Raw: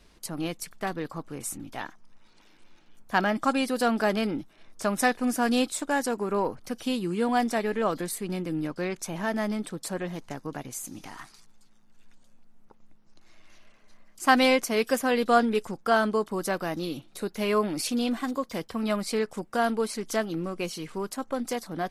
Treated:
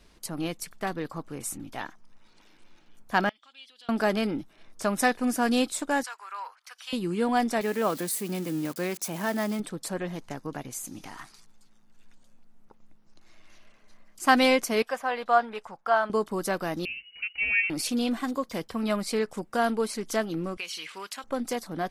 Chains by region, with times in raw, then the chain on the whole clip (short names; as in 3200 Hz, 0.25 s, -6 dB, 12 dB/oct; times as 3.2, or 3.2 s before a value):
3.29–3.89 compressor 2.5:1, threshold -30 dBFS + band-pass 3300 Hz, Q 6.5
6.03–6.93 HPF 1100 Hz 24 dB/oct + high shelf 8700 Hz -12 dB
7.61–9.6 switching spikes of -31 dBFS + HPF 110 Hz
14.82–16.1 LPF 1600 Hz 6 dB/oct + resonant low shelf 510 Hz -13 dB, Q 1.5
16.85–17.7 EQ curve 230 Hz 0 dB, 370 Hz -7 dB, 680 Hz +7 dB, 2100 Hz -17 dB, 4400 Hz +5 dB + inverted band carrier 2900 Hz
20.57–21.24 HPF 1400 Hz 6 dB/oct + bell 2700 Hz +12 dB 1.9 oct + compressor 3:1, threshold -33 dBFS
whole clip: dry